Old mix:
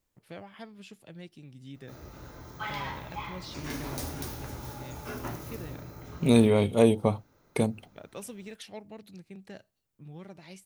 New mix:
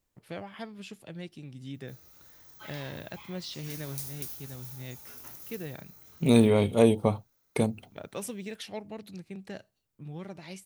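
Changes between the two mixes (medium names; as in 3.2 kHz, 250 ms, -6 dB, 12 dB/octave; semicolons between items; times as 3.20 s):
first voice +4.5 dB; background: add pre-emphasis filter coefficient 0.9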